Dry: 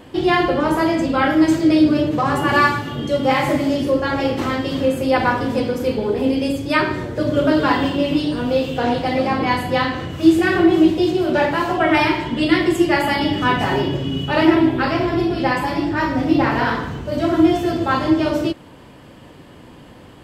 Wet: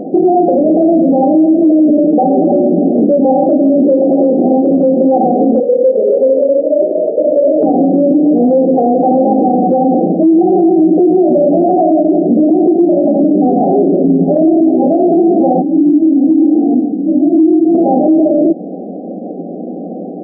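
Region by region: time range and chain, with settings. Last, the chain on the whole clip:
0:05.60–0:07.63: formant filter e + echo with shifted repeats 263 ms, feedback 47%, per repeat +31 Hz, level −8 dB
0:15.62–0:17.75: formant resonators in series u + multi-tap delay 107/205/229/768 ms −6/−13/−13.5/−14 dB + micro pitch shift up and down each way 18 cents
whole clip: brick-wall band-pass 170–800 Hz; downward compressor 2 to 1, threshold −24 dBFS; boost into a limiter +23.5 dB; level −2 dB

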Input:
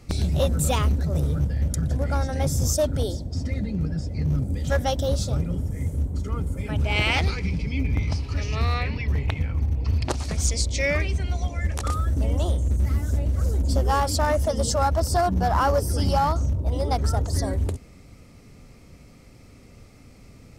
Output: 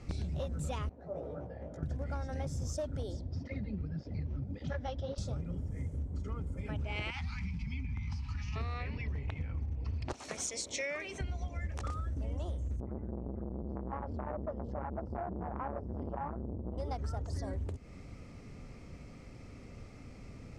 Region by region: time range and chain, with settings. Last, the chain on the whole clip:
0:00.89–0:01.83: resonant band-pass 660 Hz, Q 2.1 + double-tracking delay 17 ms −5 dB
0:03.21–0:05.18: low-pass filter 5,200 Hz 24 dB per octave + through-zero flanger with one copy inverted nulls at 1.8 Hz, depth 7.3 ms
0:07.10–0:08.56: Chebyshev band-stop filter 240–860 Hz, order 3 + downward compressor 2 to 1, threshold −27 dBFS
0:10.13–0:11.21: high-pass filter 360 Hz + high-shelf EQ 8,300 Hz +8.5 dB + notch filter 4,800 Hz, Q 8
0:12.80–0:16.78: low-pass filter 1,000 Hz + saturating transformer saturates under 480 Hz
whole clip: low-pass filter 5,800 Hz 12 dB per octave; parametric band 4,000 Hz −4.5 dB 0.83 octaves; downward compressor, threshold −34 dBFS; level −1 dB

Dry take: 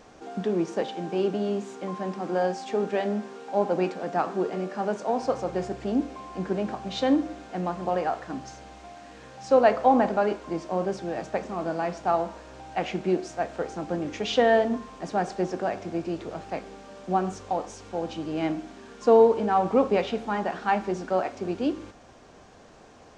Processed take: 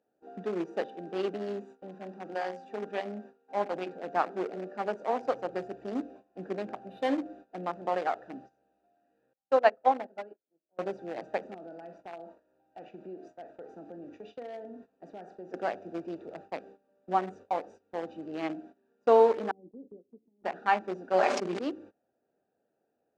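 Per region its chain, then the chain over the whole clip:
0:01.65–0:03.93: parametric band 420 Hz −4 dB 1 octave + mains-hum notches 60/120/180/240/300/360/420/480/540/600 Hz
0:06.79–0:07.26: running median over 9 samples + mains-hum notches 60/120/180/240/300/360/420/480/540 Hz
0:09.33–0:10.79: mains-hum notches 60/120/180/240/300/360/420 Hz + expander for the loud parts 2.5 to 1, over −33 dBFS
0:11.54–0:15.54: flutter between parallel walls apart 7.1 metres, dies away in 0.21 s + downward compressor 3 to 1, threshold −35 dBFS
0:19.51–0:20.44: downward compressor 2 to 1, threshold −33 dBFS + transistor ladder low-pass 370 Hz, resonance 45%
0:21.13–0:21.59: comb filter 5 ms, depth 69% + level that may fall only so fast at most 35 dB per second
whole clip: adaptive Wiener filter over 41 samples; meter weighting curve A; noise gate −49 dBFS, range −18 dB

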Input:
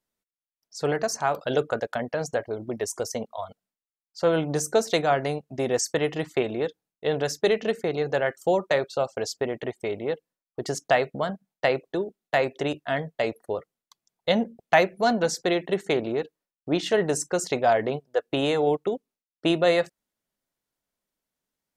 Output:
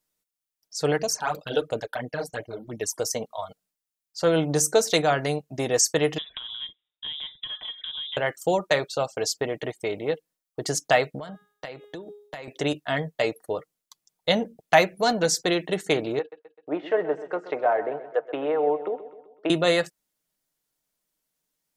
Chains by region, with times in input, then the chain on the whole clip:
0:00.97–0:02.99: noise gate −45 dBFS, range −6 dB + all-pass phaser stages 12, 2.9 Hz, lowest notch 110–1,700 Hz
0:06.18–0:08.17: downward compressor 8 to 1, threshold −36 dBFS + voice inversion scrambler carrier 3,700 Hz
0:11.18–0:12.48: hum removal 413.8 Hz, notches 9 + downward compressor 12 to 1, threshold −34 dBFS
0:16.19–0:19.50: treble cut that deepens with the level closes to 1,500 Hz, closed at −21 dBFS + three-way crossover with the lows and the highs turned down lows −21 dB, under 330 Hz, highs −22 dB, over 2,600 Hz + repeating echo 128 ms, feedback 51%, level −14 dB
whole clip: high-shelf EQ 3,900 Hz +8.5 dB; comb filter 6.5 ms, depth 35%

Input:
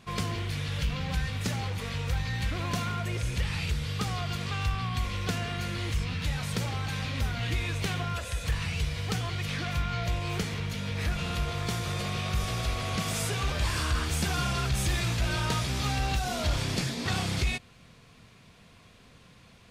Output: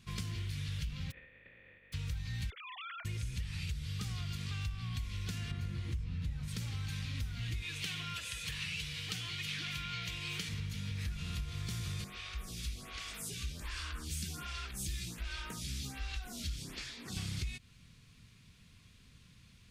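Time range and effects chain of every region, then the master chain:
0:01.10–0:01.92: compressing power law on the bin magnitudes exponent 0.19 + formant resonators in series e
0:02.50–0:03.05: three sine waves on the formant tracks + downward compressor 2.5 to 1, threshold −34 dBFS
0:05.51–0:06.48: tilt shelving filter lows +7.5 dB, about 1,400 Hz + mains-hum notches 50/100/150/200/250/300/350/400/450 Hz
0:07.62–0:10.49: high-pass filter 300 Hz 6 dB per octave + parametric band 2,900 Hz +6.5 dB 1.2 octaves + comb filter 6.5 ms, depth 33%
0:12.04–0:17.17: parametric band 110 Hz −14.5 dB 0.63 octaves + phaser with staggered stages 1.3 Hz
whole clip: guitar amp tone stack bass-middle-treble 6-0-2; downward compressor, threshold −46 dBFS; level +11 dB

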